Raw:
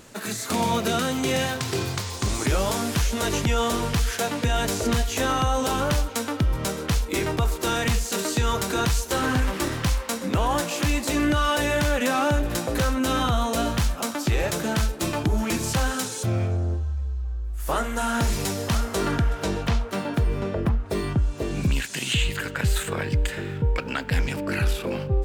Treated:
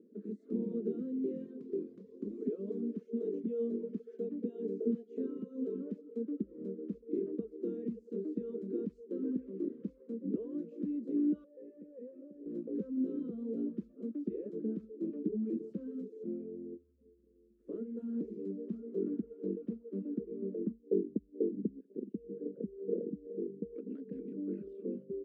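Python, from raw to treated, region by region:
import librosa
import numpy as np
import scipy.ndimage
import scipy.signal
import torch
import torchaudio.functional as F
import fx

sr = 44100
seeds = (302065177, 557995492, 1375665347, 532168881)

y = fx.chain(x, sr, fx.highpass(hz=220.0, slope=12),
    fx.comb(ms=4.6, depth=0.53), at=(2.37, 6.25))
y = fx.chain(y, sr, fx.formant_cascade(vowel='e'),
    fx.tube_stage(drive_db=25.0, bias=0.25),
    fx.env_flatten(amount_pct=50), at=(11.44, 12.46))
y = fx.chain(y, sr, fx.envelope_sharpen(power=1.5),
    fx.lowpass_res(hz=560.0, q=2.5), at=(20.73, 23.72))
y = scipy.signal.sosfilt(scipy.signal.ellip(3, 1.0, 40, [200.0, 450.0], 'bandpass', fs=sr, output='sos'), y)
y = fx.dereverb_blind(y, sr, rt60_s=0.59)
y = F.gain(torch.from_numpy(y), -5.5).numpy()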